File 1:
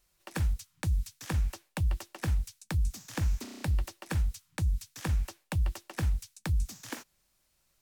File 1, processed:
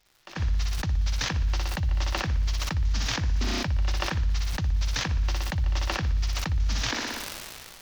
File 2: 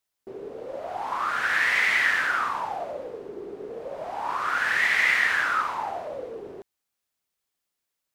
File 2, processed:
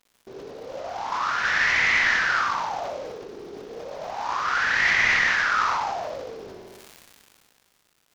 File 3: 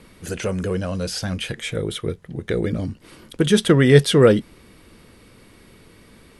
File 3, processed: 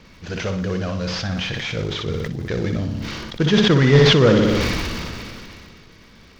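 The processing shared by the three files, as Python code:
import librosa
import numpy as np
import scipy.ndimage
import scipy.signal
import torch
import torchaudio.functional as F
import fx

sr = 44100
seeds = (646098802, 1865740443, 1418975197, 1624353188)

y = fx.cvsd(x, sr, bps=32000)
y = fx.peak_eq(y, sr, hz=380.0, db=-5.0, octaves=1.7)
y = fx.dmg_crackle(y, sr, seeds[0], per_s=210.0, level_db=-50.0)
y = fx.room_flutter(y, sr, wall_m=10.3, rt60_s=0.5)
y = fx.sustainer(y, sr, db_per_s=22.0)
y = y * 10.0 ** (1.5 / 20.0)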